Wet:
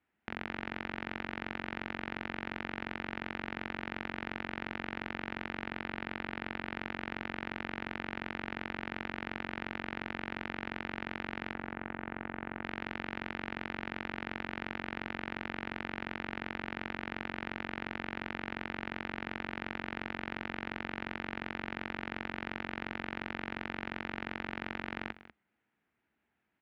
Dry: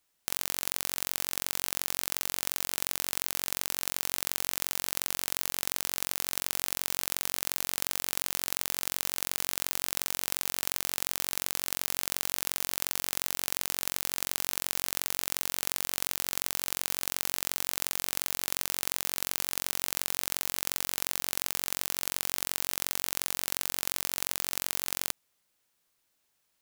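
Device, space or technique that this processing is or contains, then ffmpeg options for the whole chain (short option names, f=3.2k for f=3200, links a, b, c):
bass cabinet: -filter_complex "[0:a]asettb=1/sr,asplit=3[a][b][c];[a]atrim=end=5.664[d];[b]atrim=start=5.66:end=6.75,asetpts=PTS-STARTPTS,afade=t=in:d=0.004:c=qsin,afade=t=out:st=1.086:d=0.004:c=qsin,bandreject=f=6.1k:w=5.9[e];[c]atrim=start=6.746[f];[d][e]acrossfade=d=0.004:c1=hsin:c2=qsin[g];[g][f]acrossfade=d=0.004:c1=qsin:c2=hsin,asettb=1/sr,asplit=3[h][i][j];[h]atrim=end=11.534[k];[i]atrim=start=11.53:end=12.64,asetpts=PTS-STARTPTS,afade=t=in:d=0.004:c=qsin,afade=t=out:st=1.106:d=0.004:c=qsin,lowpass=1.8k[l];[j]atrim=start=12.636[m];[k][l]acrossfade=d=0.004:c1=hsin:c2=qsin[n];[n][m]acrossfade=d=0.004:c1=qsin:c2=hsin,lowpass=8.2k,highpass=65,equalizer=f=67:t=q:w=4:g=6,equalizer=f=220:t=q:w=4:g=8,equalizer=f=310:t=q:w=4:g=3,equalizer=f=550:t=q:w=4:g=-8,equalizer=f=1.1k:t=q:w=4:g=-7,lowpass=f=2.2k:w=0.5412,lowpass=f=2.2k:w=1.3066,aecho=1:1:194:0.168,volume=3.5dB"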